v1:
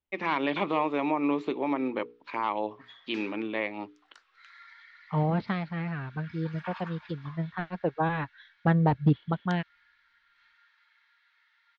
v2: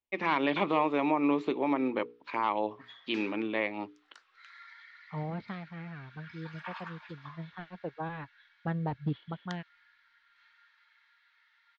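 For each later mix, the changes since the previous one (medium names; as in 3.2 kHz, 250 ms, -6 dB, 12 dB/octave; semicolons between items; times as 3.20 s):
second voice -10.0 dB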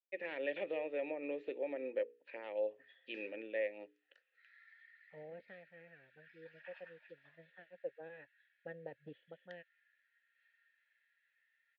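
master: add vowel filter e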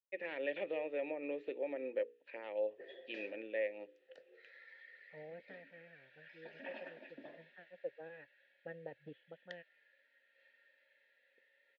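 background: remove ladder high-pass 1.1 kHz, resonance 45%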